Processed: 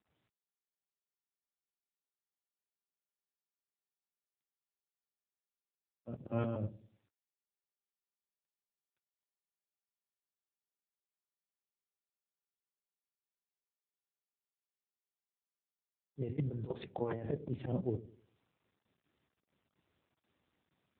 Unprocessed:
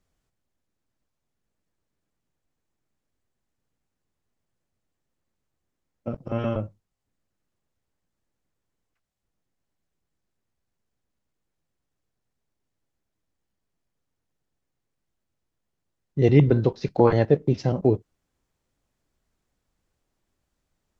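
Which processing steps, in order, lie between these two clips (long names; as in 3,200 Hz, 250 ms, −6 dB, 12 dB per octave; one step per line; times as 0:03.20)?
volume swells 272 ms
compressor whose output falls as the input rises −33 dBFS, ratio −1
delay with a low-pass on its return 99 ms, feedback 35%, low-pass 430 Hz, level −15 dB
noise gate with hold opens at −60 dBFS
level −3.5 dB
AMR narrowband 7.95 kbit/s 8,000 Hz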